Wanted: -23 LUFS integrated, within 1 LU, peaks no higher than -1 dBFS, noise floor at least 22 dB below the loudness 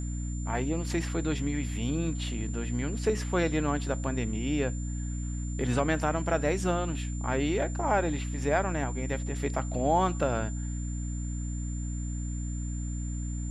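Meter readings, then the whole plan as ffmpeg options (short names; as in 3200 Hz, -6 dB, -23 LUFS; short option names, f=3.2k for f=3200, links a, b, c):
hum 60 Hz; harmonics up to 300 Hz; hum level -31 dBFS; steady tone 7200 Hz; tone level -45 dBFS; loudness -31.0 LUFS; peak -12.0 dBFS; loudness target -23.0 LUFS
-> -af "bandreject=f=60:t=h:w=4,bandreject=f=120:t=h:w=4,bandreject=f=180:t=h:w=4,bandreject=f=240:t=h:w=4,bandreject=f=300:t=h:w=4"
-af "bandreject=f=7.2k:w=30"
-af "volume=8dB"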